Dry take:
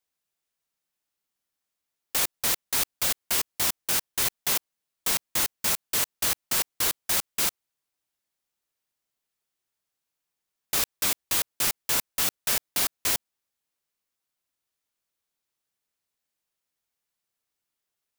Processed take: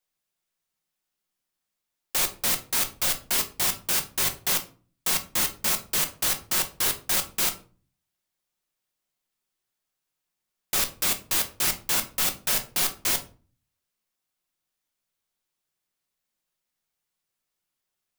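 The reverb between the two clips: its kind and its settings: shoebox room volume 250 m³, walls furnished, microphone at 0.97 m

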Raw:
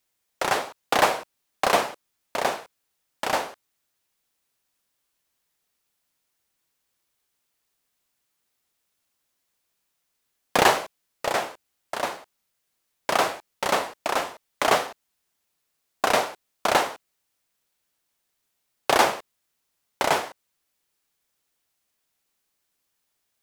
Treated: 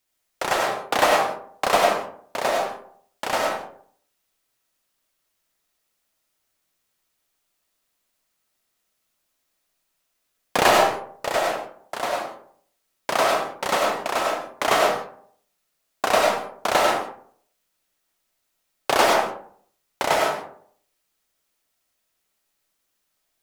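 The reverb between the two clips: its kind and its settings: digital reverb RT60 0.59 s, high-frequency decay 0.45×, pre-delay 55 ms, DRR -1.5 dB; gain -1 dB

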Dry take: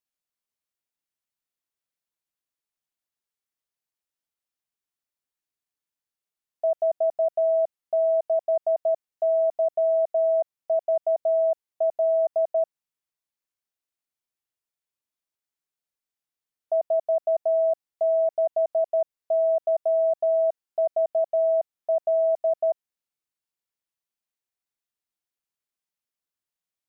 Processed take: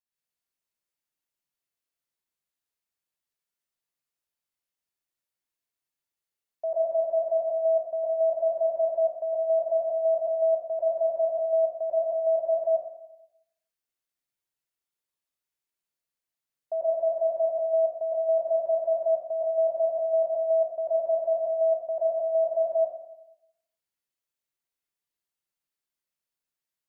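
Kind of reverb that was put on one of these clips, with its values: plate-style reverb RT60 0.83 s, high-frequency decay 1×, pre-delay 95 ms, DRR -6 dB; gain -6.5 dB

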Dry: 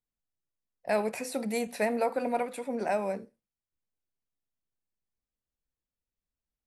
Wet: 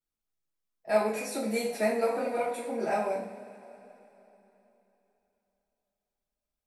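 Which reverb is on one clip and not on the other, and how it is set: two-slope reverb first 0.43 s, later 3.5 s, from -20 dB, DRR -8.5 dB; gain -8 dB

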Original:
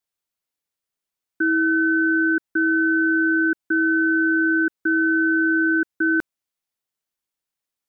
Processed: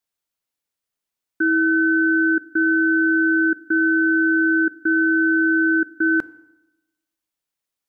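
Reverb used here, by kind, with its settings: FDN reverb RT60 0.95 s, low-frequency decay 1.1×, high-frequency decay 0.75×, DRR 17.5 dB; gain +1 dB

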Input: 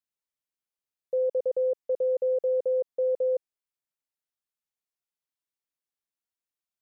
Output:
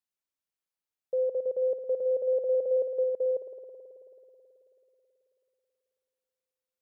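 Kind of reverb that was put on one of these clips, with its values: spring tank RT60 3.3 s, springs 54 ms, chirp 45 ms, DRR 6 dB; gain -2 dB

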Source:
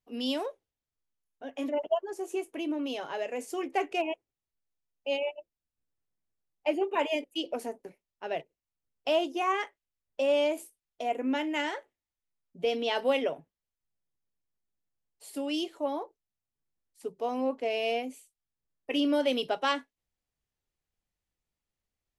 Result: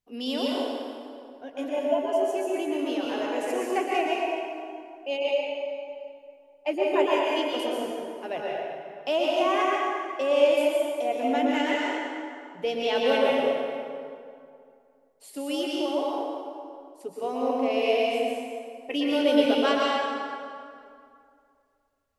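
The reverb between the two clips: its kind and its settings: plate-style reverb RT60 2.4 s, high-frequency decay 0.65×, pre-delay 0.105 s, DRR -4.5 dB

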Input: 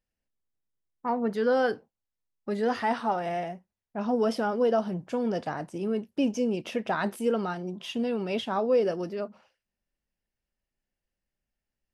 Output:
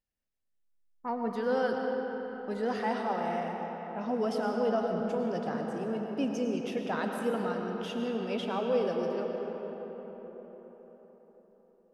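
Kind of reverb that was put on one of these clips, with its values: digital reverb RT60 4.9 s, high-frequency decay 0.5×, pre-delay 65 ms, DRR 1.5 dB; gain -5.5 dB

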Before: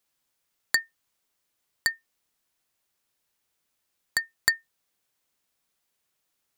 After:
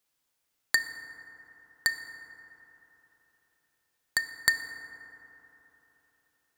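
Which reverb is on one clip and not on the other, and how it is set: FDN reverb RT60 3.7 s, high-frequency decay 0.3×, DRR 7.5 dB; gain -1.5 dB

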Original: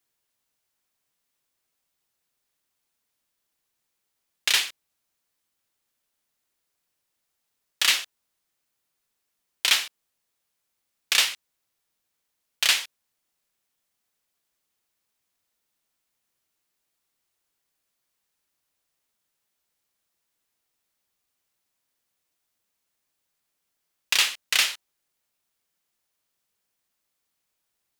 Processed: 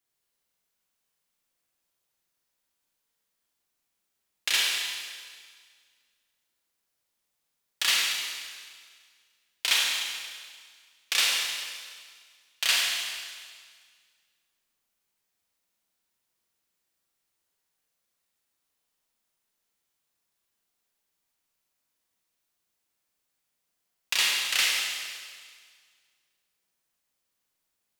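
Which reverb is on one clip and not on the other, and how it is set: Schroeder reverb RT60 1.8 s, combs from 33 ms, DRR -2.5 dB; gain -5.5 dB

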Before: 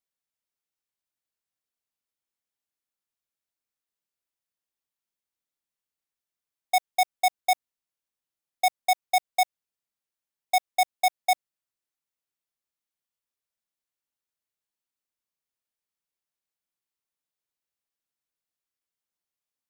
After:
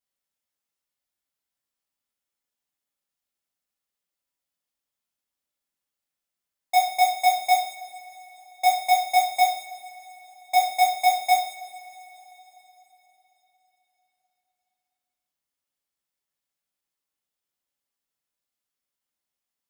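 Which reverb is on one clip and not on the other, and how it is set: two-slope reverb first 0.56 s, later 4.2 s, from -22 dB, DRR -5 dB; gain -3 dB

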